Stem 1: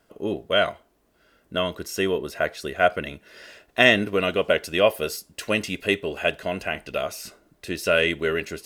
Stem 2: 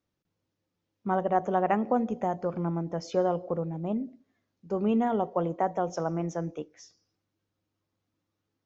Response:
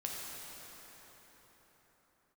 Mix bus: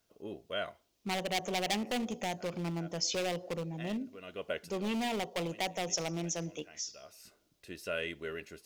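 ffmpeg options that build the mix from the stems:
-filter_complex "[0:a]volume=-16dB[link_01];[1:a]volume=25.5dB,asoftclip=hard,volume=-25.5dB,aexciter=amount=7.3:drive=2.8:freq=2200,volume=-5.5dB,asplit=2[link_02][link_03];[link_03]apad=whole_len=381824[link_04];[link_01][link_04]sidechaincompress=threshold=-53dB:ratio=8:attack=36:release=352[link_05];[link_05][link_02]amix=inputs=2:normalize=0"

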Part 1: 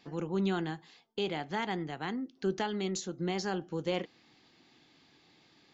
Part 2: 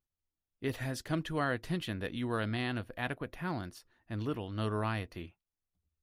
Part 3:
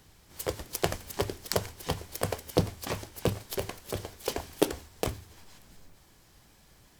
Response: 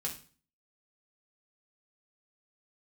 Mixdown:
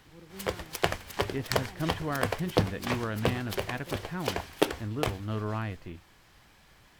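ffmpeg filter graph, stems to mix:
-filter_complex "[0:a]volume=-17dB[link_01];[1:a]adelay=700,volume=-0.5dB[link_02];[2:a]tiltshelf=frequency=710:gain=-6,volume=2dB[link_03];[link_01][link_02][link_03]amix=inputs=3:normalize=0,bass=frequency=250:gain=3,treble=frequency=4000:gain=-13"

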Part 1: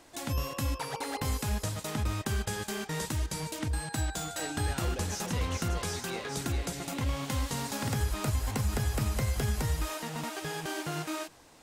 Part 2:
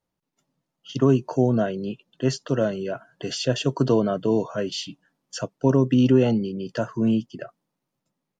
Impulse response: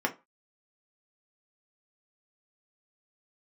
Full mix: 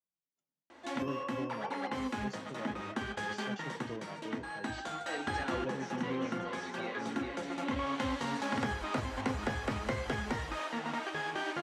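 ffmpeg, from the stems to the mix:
-filter_complex "[0:a]lowpass=3900,adelay=700,volume=2dB,asplit=2[link_01][link_02];[link_02]volume=-9.5dB[link_03];[1:a]volume=-18dB,asplit=2[link_04][link_05];[link_05]apad=whole_len=543331[link_06];[link_01][link_06]sidechaincompress=threshold=-41dB:ratio=8:attack=16:release=1330[link_07];[2:a]atrim=start_sample=2205[link_08];[link_03][link_08]afir=irnorm=-1:irlink=0[link_09];[link_07][link_04][link_09]amix=inputs=3:normalize=0,highpass=52,equalizer=frequency=72:width=0.95:gain=-5,flanger=delay=4:depth=9.2:regen=75:speed=0.58:shape=triangular"

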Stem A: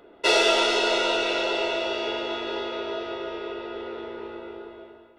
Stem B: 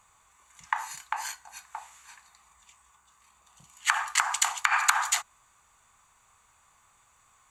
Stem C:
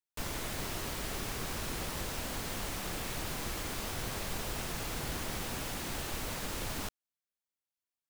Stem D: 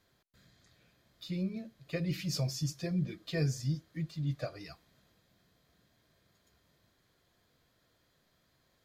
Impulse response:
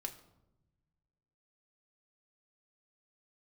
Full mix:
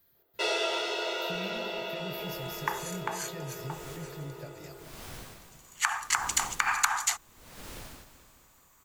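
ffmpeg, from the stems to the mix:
-filter_complex "[0:a]agate=range=-13dB:threshold=-42dB:ratio=16:detection=peak,highpass=frequency=330:width=0.5412,highpass=frequency=330:width=1.3066,adelay=150,volume=-9.5dB[link_01];[1:a]aexciter=amount=1.8:drive=7.5:freq=4900,highshelf=frequency=7200:gain=-7,adelay=1950,volume=-3dB[link_02];[2:a]aeval=exprs='val(0)*pow(10,-26*(0.5-0.5*cos(2*PI*0.76*n/s))/20)':channel_layout=same,adelay=1150,volume=-5.5dB,asplit=2[link_03][link_04];[link_04]volume=-12dB[link_05];[3:a]aexciter=amount=11.1:drive=7.6:freq=12000,alimiter=level_in=6.5dB:limit=-24dB:level=0:latency=1:release=266,volume=-6.5dB,volume=-3.5dB,asplit=3[link_06][link_07][link_08];[link_07]volume=-9.5dB[link_09];[link_08]apad=whole_len=407593[link_10];[link_03][link_10]sidechaincompress=threshold=-52dB:ratio=8:attack=16:release=169[link_11];[link_05][link_09]amix=inputs=2:normalize=0,aecho=0:1:215|430|645|860|1075|1290|1505|1720|1935:1|0.59|0.348|0.205|0.121|0.0715|0.0422|0.0249|0.0147[link_12];[link_01][link_02][link_11][link_06][link_12]amix=inputs=5:normalize=0"

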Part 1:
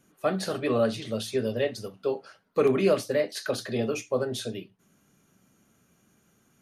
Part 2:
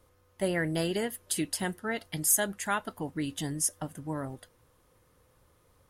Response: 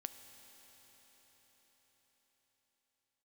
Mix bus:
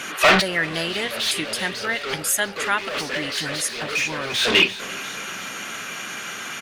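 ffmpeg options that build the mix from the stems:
-filter_complex "[0:a]asplit=2[link_01][link_02];[link_02]highpass=frequency=720:poles=1,volume=39dB,asoftclip=type=tanh:threshold=-11dB[link_03];[link_01][link_03]amix=inputs=2:normalize=0,lowpass=frequency=6200:poles=1,volume=-6dB,volume=-2.5dB,asplit=2[link_04][link_05];[link_05]volume=-23dB[link_06];[1:a]volume=-1dB,asplit=2[link_07][link_08];[link_08]apad=whole_len=291671[link_09];[link_04][link_09]sidechaincompress=threshold=-48dB:ratio=16:attack=9.5:release=263[link_10];[link_06]aecho=0:1:346|692|1038|1384|1730|2076|2422|2768|3114:1|0.57|0.325|0.185|0.106|0.0602|0.0343|0.0195|0.0111[link_11];[link_10][link_07][link_11]amix=inputs=3:normalize=0,equalizer=frequency=2400:width=0.48:gain=13.5"

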